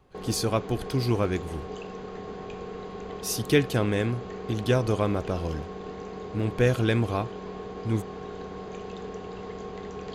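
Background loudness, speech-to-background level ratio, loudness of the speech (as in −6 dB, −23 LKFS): −38.5 LKFS, 11.0 dB, −27.5 LKFS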